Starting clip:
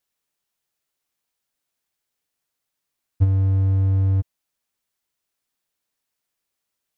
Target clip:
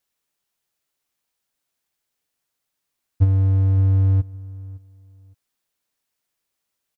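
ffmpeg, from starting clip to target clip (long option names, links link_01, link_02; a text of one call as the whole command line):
ffmpeg -i in.wav -filter_complex "[0:a]asplit=2[link_01][link_02];[link_02]adelay=562,lowpass=frequency=2000:poles=1,volume=-20dB,asplit=2[link_03][link_04];[link_04]adelay=562,lowpass=frequency=2000:poles=1,volume=0.26[link_05];[link_01][link_03][link_05]amix=inputs=3:normalize=0,volume=1.5dB" out.wav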